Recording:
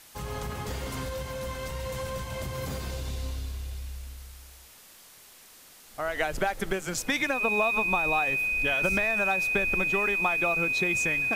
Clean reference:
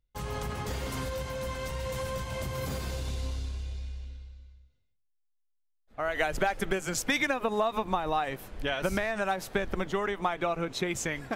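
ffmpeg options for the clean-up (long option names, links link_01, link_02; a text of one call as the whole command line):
ffmpeg -i in.wav -af "bandreject=frequency=2500:width=30,afwtdn=0.0028" out.wav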